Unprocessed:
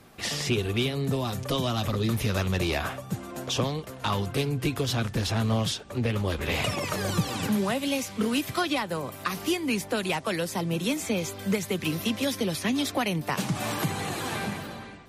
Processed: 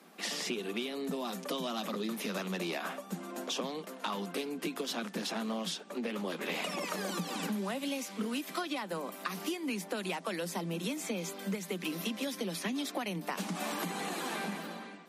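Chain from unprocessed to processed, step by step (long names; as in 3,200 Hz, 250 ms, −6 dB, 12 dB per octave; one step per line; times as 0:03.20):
Chebyshev high-pass filter 170 Hz, order 8
downward compressor, threshold −29 dBFS, peak gain reduction 8.5 dB
level −3 dB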